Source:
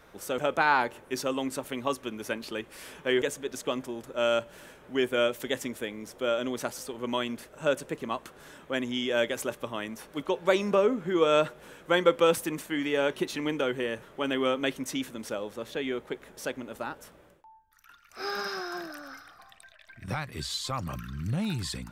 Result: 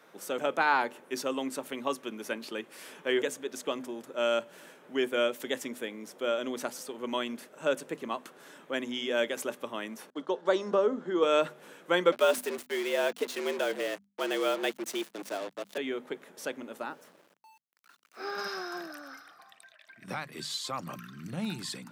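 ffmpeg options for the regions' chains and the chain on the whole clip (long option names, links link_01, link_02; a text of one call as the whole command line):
ffmpeg -i in.wav -filter_complex "[0:a]asettb=1/sr,asplit=3[link_01][link_02][link_03];[link_01]atrim=end=10.104[link_04];[link_02]atrim=start=10.1:end=11.23,asetpts=PTS-STARTPTS,afade=type=in:duration=0.004:curve=qsin,afade=type=out:start_time=1.126:duration=0.004:curve=qsin,agate=range=-33dB:threshold=-45dB:ratio=16:release=100:detection=peak,highpass=210,lowpass=6000,equalizer=frequency=2400:width=3.4:gain=-13[link_05];[link_03]atrim=start=11.226[link_06];[link_04][link_05]acrossfade=duration=0.004:curve1=hsin:curve2=qsin[link_07];[link_07][link_06]acrossfade=duration=0.004:curve1=qsin:curve2=hsin,asettb=1/sr,asplit=3[link_08][link_09][link_10];[link_08]atrim=end=12.124[link_11];[link_09]atrim=start=12.12:end=15.78,asetpts=PTS-STARTPTS,afade=type=in:duration=0.004:curve=qsin,afade=type=out:start_time=3.656:duration=0.004:curve=qsin,acrusher=bits=5:mix=0:aa=0.5,afreqshift=83[link_12];[link_10]atrim=start=15.776[link_13];[link_11][link_12]acrossfade=duration=0.004:curve1=hsin:curve2=qsin[link_14];[link_14][link_13]acrossfade=duration=0.004:curve1=qsin:curve2=hsin,asettb=1/sr,asplit=3[link_15][link_16][link_17];[link_15]atrim=end=16.904[link_18];[link_16]atrim=start=16.9:end=18.38,asetpts=PTS-STARTPTS,afade=type=in:duration=0.004:curve=qsin,afade=type=out:start_time=1.476:duration=0.004:curve=qsin,highpass=100,highshelf=frequency=3300:gain=-9,aeval=exprs='val(0)*gte(abs(val(0)),0.00168)':channel_layout=same[link_19];[link_17]atrim=start=18.376[link_20];[link_18][link_19]acrossfade=duration=0.004:curve1=hsin:curve2=qsin[link_21];[link_21][link_20]acrossfade=duration=0.004:curve1=qsin:curve2=hsin,highpass=frequency=170:width=0.5412,highpass=frequency=170:width=1.3066,bandreject=frequency=50:width_type=h:width=6,bandreject=frequency=100:width_type=h:width=6,bandreject=frequency=150:width_type=h:width=6,bandreject=frequency=200:width_type=h:width=6,bandreject=frequency=250:width_type=h:width=6,volume=-2dB" out.wav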